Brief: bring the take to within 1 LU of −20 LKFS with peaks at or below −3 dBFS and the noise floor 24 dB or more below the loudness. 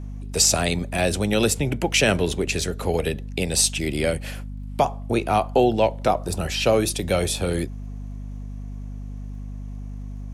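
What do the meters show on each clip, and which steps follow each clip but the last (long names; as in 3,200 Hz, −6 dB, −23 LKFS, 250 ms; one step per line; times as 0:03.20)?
crackle rate 36 per second; mains hum 50 Hz; hum harmonics up to 250 Hz; level of the hum −30 dBFS; integrated loudness −22.0 LKFS; sample peak −5.0 dBFS; target loudness −20.0 LKFS
→ click removal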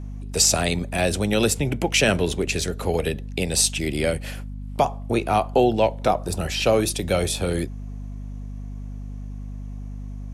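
crackle rate 0 per second; mains hum 50 Hz; hum harmonics up to 250 Hz; level of the hum −31 dBFS
→ hum removal 50 Hz, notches 5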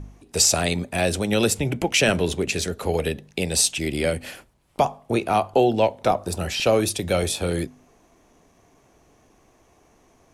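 mains hum none found; integrated loudness −22.5 LKFS; sample peak −4.5 dBFS; target loudness −20.0 LKFS
→ level +2.5 dB
brickwall limiter −3 dBFS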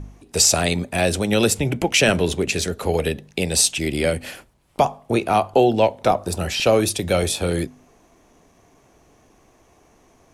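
integrated loudness −20.0 LKFS; sample peak −3.0 dBFS; background noise floor −56 dBFS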